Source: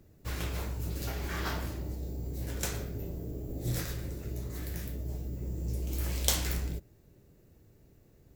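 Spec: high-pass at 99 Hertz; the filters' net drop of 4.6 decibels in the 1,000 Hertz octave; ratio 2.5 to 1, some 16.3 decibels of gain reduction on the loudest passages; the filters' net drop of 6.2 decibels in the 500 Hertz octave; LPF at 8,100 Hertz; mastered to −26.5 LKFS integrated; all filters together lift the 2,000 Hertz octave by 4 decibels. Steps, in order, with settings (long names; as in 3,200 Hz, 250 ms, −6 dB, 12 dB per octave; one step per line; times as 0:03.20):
high-pass filter 99 Hz
low-pass filter 8,100 Hz
parametric band 500 Hz −7 dB
parametric band 1,000 Hz −7 dB
parametric band 2,000 Hz +7.5 dB
downward compressor 2.5 to 1, threshold −52 dBFS
level +24 dB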